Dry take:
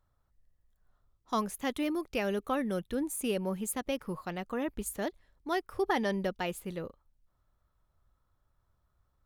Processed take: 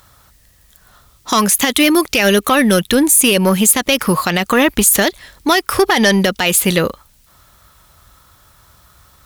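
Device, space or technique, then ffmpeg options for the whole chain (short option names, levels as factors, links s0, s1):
mastering chain: -af "highpass=44,equalizer=f=200:t=o:w=0.77:g=2.5,acompressor=threshold=0.0158:ratio=2,asoftclip=type=tanh:threshold=0.0422,tiltshelf=f=1400:g=-8,asoftclip=type=hard:threshold=0.0631,alimiter=level_in=44.7:limit=0.891:release=50:level=0:latency=1,volume=0.841"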